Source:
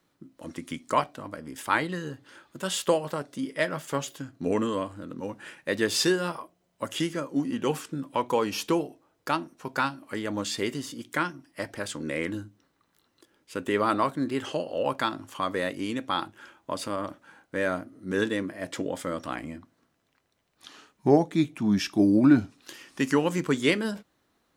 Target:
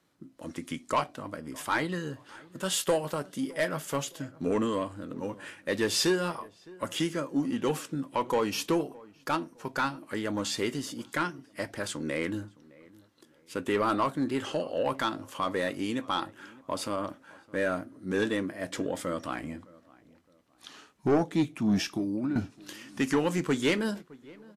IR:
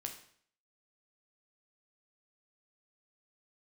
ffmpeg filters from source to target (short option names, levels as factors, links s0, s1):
-filter_complex "[0:a]asettb=1/sr,asplit=3[s0][s1][s2];[s0]atrim=end=2.724[s3];[s1]atrim=start=2.72:end=4.04,asetpts=PTS-STARTPTS,afade=t=in:d=0.004:c=qsin,afade=t=out:st=1.316:d=0.004:c=qsin,highshelf=f=12000:g=11.5[s4];[s2]atrim=start=4.036[s5];[s3][s4]acrossfade=d=0.004:c1=hsin:c2=qsin[s6];[s6][s5]acrossfade=d=0.004:c1=qsin:c2=hsin,asettb=1/sr,asplit=3[s7][s8][s9];[s7]atrim=end=21.784[s10];[s8]atrim=start=21.78:end=22.36,asetpts=PTS-STARTPTS,afade=t=in:d=0.004:c=qsin,afade=t=out:st=0.576:d=0.004:c=qsin,acompressor=threshold=0.0447:ratio=16[s11];[s9]atrim=start=22.356[s12];[s10][s11]acrossfade=d=0.004:c1=hsin:c2=qsin[s13];[s13][s12]acrossfade=d=0.004:c1=qsin:c2=hsin,asoftclip=type=tanh:threshold=0.126,asplit=2[s14][s15];[s15]adelay=613,lowpass=f=1600:p=1,volume=0.0794,asplit=2[s16][s17];[s17]adelay=613,lowpass=f=1600:p=1,volume=0.35[s18];[s16][s18]amix=inputs=2:normalize=0[s19];[s14][s19]amix=inputs=2:normalize=0" -ar 32000 -c:a libvorbis -b:a 64k